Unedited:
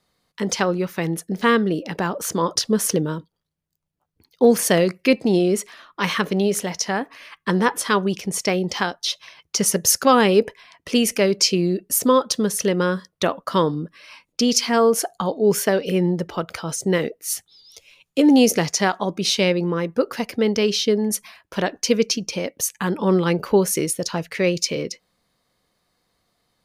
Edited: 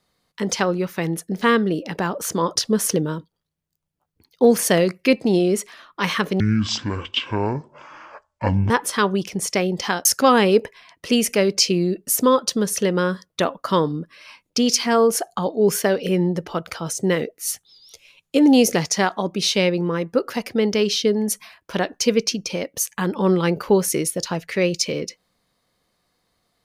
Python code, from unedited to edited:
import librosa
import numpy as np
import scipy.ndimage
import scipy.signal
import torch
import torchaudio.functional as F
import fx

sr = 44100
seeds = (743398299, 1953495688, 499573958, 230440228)

y = fx.edit(x, sr, fx.speed_span(start_s=6.4, length_s=1.22, speed=0.53),
    fx.cut(start_s=8.97, length_s=0.91), tone=tone)